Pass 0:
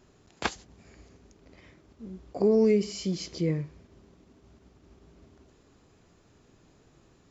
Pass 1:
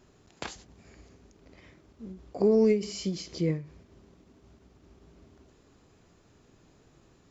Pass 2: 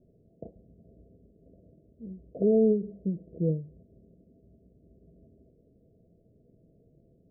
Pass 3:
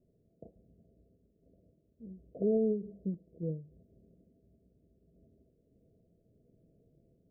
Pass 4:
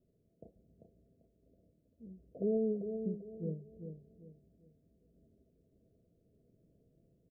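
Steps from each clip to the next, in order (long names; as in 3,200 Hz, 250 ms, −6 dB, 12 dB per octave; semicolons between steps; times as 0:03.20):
every ending faded ahead of time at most 140 dB per second
Chebyshev low-pass with heavy ripple 680 Hz, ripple 6 dB; level +2 dB
sample-and-hold tremolo 3.5 Hz; level −5 dB
repeating echo 393 ms, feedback 32%, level −7.5 dB; level −3.5 dB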